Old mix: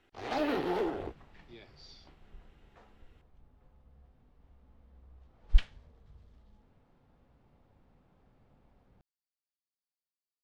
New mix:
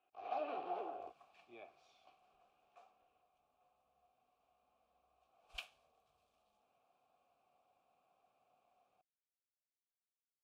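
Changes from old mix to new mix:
speech: remove four-pole ladder low-pass 4.8 kHz, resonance 85%; second sound: remove tape spacing loss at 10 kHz 39 dB; master: add vowel filter a

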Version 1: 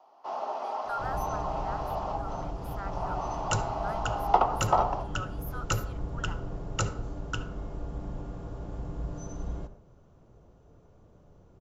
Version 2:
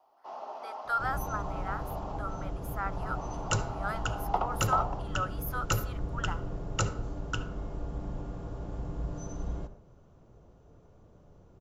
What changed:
speech +6.5 dB; first sound -7.5 dB

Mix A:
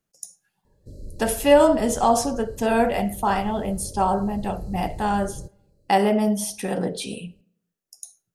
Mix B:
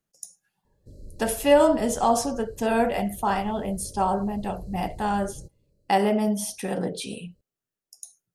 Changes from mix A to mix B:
background -5.0 dB; reverb: off

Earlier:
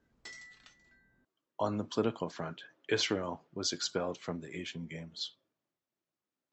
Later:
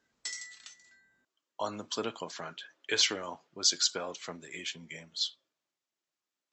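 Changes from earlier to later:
background: remove distance through air 85 m; master: add tilt EQ +3.5 dB/octave

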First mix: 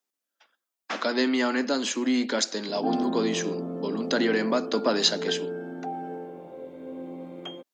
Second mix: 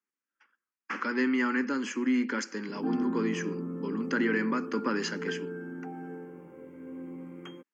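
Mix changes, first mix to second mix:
speech: add low-pass 4.7 kHz 12 dB/octave; master: add static phaser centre 1.6 kHz, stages 4

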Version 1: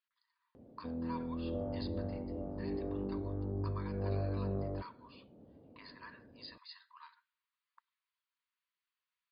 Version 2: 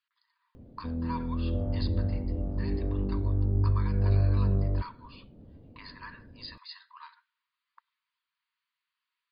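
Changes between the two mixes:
speech +7.0 dB; background: remove band-pass filter 720 Hz, Q 0.57

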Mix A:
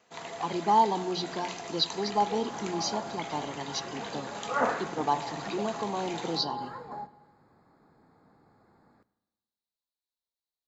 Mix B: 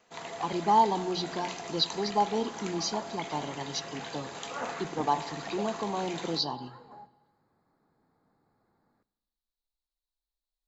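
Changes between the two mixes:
speech: remove high-pass 130 Hz; second sound -10.0 dB

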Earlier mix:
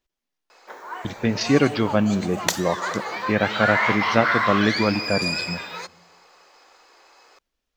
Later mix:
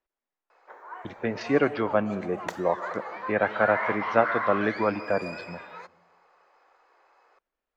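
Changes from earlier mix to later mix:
background -6.0 dB; master: add three-band isolator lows -12 dB, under 370 Hz, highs -18 dB, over 2.1 kHz

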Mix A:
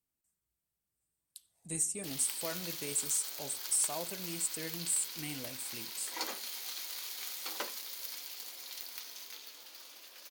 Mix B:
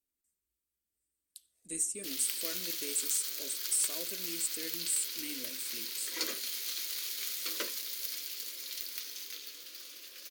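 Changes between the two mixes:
background +4.5 dB; master: add static phaser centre 340 Hz, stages 4

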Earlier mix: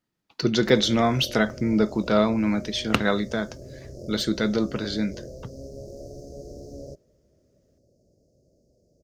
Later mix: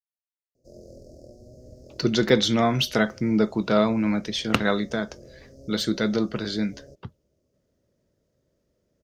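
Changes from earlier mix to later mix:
speech: entry +1.60 s; background -8.0 dB

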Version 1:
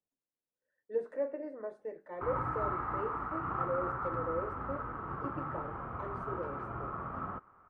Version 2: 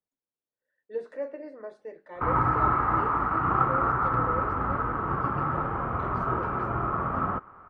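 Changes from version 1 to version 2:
speech: add peaking EQ 4.2 kHz +13 dB 1.7 oct; background +11.5 dB

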